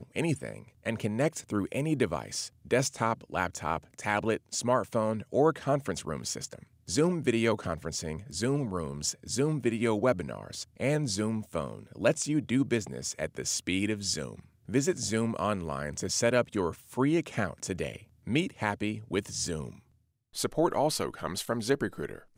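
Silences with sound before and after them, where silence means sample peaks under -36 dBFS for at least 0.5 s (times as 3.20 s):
19.71–20.36 s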